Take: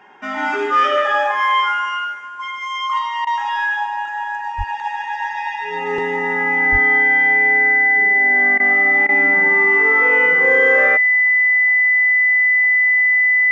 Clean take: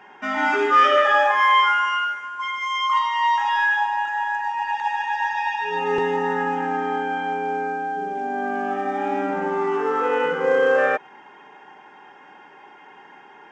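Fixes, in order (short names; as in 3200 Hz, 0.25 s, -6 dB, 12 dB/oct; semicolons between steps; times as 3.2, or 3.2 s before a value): notch 2000 Hz, Q 30; 4.57–4.69 HPF 140 Hz 24 dB/oct; 6.71–6.83 HPF 140 Hz 24 dB/oct; interpolate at 3.25/8.58/9.07, 18 ms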